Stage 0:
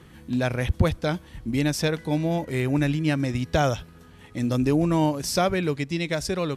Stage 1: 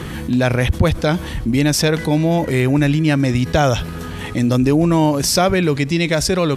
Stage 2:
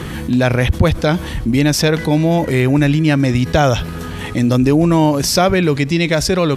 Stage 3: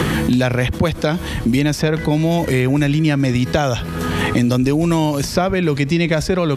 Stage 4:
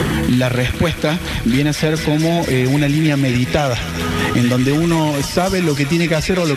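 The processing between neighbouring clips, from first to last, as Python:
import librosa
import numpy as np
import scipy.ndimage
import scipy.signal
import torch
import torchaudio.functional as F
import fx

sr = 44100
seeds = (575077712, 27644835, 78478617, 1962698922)

y1 = fx.env_flatten(x, sr, amount_pct=50)
y1 = y1 * 10.0 ** (4.5 / 20.0)
y2 = fx.dynamic_eq(y1, sr, hz=8900.0, q=1.3, threshold_db=-39.0, ratio=4.0, max_db=-4)
y2 = y2 * 10.0 ** (2.0 / 20.0)
y3 = fx.band_squash(y2, sr, depth_pct=100)
y3 = y3 * 10.0 ** (-3.5 / 20.0)
y4 = fx.spec_quant(y3, sr, step_db=15)
y4 = fx.echo_wet_highpass(y4, sr, ms=232, feedback_pct=81, hz=1800.0, wet_db=-3.5)
y4 = y4 * 10.0 ** (1.0 / 20.0)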